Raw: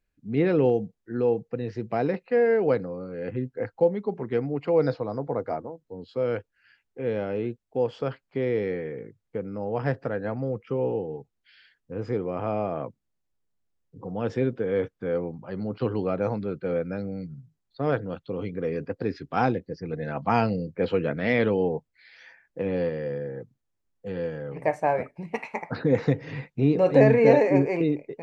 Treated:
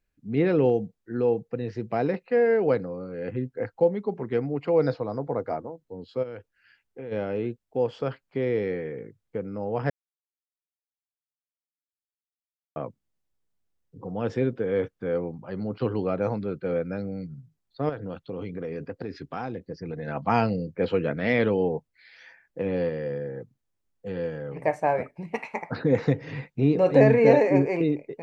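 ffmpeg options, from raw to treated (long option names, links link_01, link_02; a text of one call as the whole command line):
ffmpeg -i in.wav -filter_complex "[0:a]asplit=3[link_01][link_02][link_03];[link_01]afade=type=out:start_time=6.22:duration=0.02[link_04];[link_02]acompressor=threshold=-34dB:ratio=5:attack=3.2:release=140:knee=1:detection=peak,afade=type=in:start_time=6.22:duration=0.02,afade=type=out:start_time=7.11:duration=0.02[link_05];[link_03]afade=type=in:start_time=7.11:duration=0.02[link_06];[link_04][link_05][link_06]amix=inputs=3:normalize=0,asettb=1/sr,asplit=3[link_07][link_08][link_09];[link_07]atrim=end=17.894[link_10];[link_08]atrim=start=17.89:end=20.08,asetpts=PTS-STARTPTS,afade=type=in:duration=0.004:curve=qsin,afade=type=out:start_time=2.186:duration=0.004:curve=qsin,acompressor=threshold=-29dB:ratio=5:attack=3.2:release=140:knee=1:detection=peak[link_11];[link_09]atrim=start=20.076[link_12];[link_10][link_11]acrossfade=duration=0.004:curve1=hsin:curve2=qsin[link_13];[link_13][link_12]acrossfade=duration=0.004:curve1=qsin:curve2=hsin,asplit=3[link_14][link_15][link_16];[link_14]atrim=end=9.9,asetpts=PTS-STARTPTS,afade=type=out:start_time=9.896:duration=0.004:curve=hsin[link_17];[link_15]atrim=start=9.9:end=12.76,asetpts=PTS-STARTPTS,volume=0[link_18];[link_16]atrim=start=12.76,asetpts=PTS-STARTPTS,afade=type=in:duration=0.004:curve=hsin[link_19];[link_17][link_18][link_19]concat=n=3:v=0:a=1" out.wav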